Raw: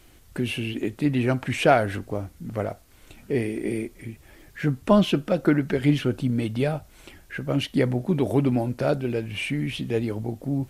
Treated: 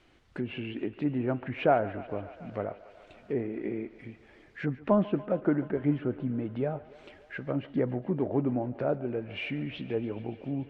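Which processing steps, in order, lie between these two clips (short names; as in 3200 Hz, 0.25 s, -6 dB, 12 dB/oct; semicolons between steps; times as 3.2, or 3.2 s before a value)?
LPF 3400 Hz 12 dB/oct; treble ducked by the level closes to 1200 Hz, closed at -21.5 dBFS; low shelf 120 Hz -10.5 dB; thinning echo 0.143 s, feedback 83%, high-pass 280 Hz, level -18 dB; gain -4.5 dB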